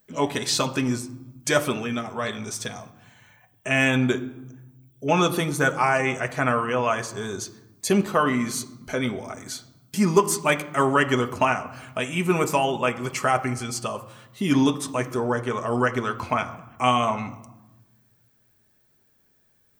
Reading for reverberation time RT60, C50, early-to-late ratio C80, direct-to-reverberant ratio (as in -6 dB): 1.0 s, 15.0 dB, 17.0 dB, 4.5 dB